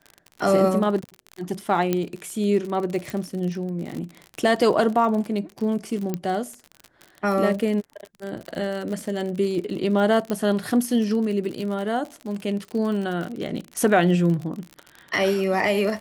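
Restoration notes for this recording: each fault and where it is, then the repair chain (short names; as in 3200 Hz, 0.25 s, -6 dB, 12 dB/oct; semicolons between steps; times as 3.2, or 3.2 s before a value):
crackle 49/s -29 dBFS
1.93 pop -9 dBFS
3.1 pop
6.14 pop -13 dBFS
10.3 pop -13 dBFS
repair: de-click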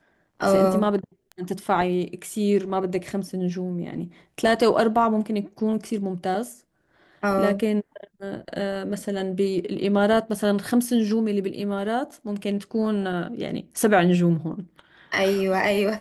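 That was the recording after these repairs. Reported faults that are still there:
1.93 pop
10.3 pop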